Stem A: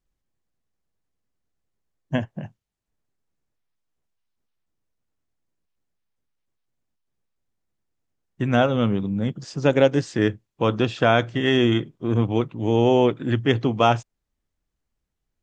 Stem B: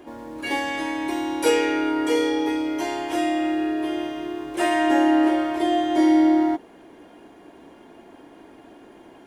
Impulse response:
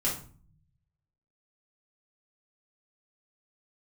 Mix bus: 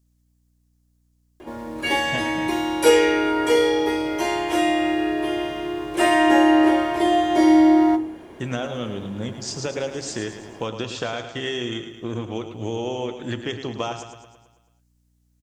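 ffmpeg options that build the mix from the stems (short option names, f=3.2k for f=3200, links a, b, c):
-filter_complex "[0:a]bass=f=250:g=-8,treble=f=4k:g=14,acompressor=threshold=-25dB:ratio=6,volume=-1dB,asplit=3[a][b][c];[b]volume=-19.5dB[d];[c]volume=-8.5dB[e];[1:a]adelay=1400,volume=2.5dB,asplit=2[f][g];[g]volume=-14dB[h];[2:a]atrim=start_sample=2205[i];[d][h]amix=inputs=2:normalize=0[j];[j][i]afir=irnorm=-1:irlink=0[k];[e]aecho=0:1:109|218|327|436|545|654|763|872:1|0.55|0.303|0.166|0.0915|0.0503|0.0277|0.0152[l];[a][f][k][l]amix=inputs=4:normalize=0,equalizer=f=83:t=o:w=0.58:g=9.5,aeval=exprs='val(0)+0.000708*(sin(2*PI*60*n/s)+sin(2*PI*2*60*n/s)/2+sin(2*PI*3*60*n/s)/3+sin(2*PI*4*60*n/s)/4+sin(2*PI*5*60*n/s)/5)':c=same"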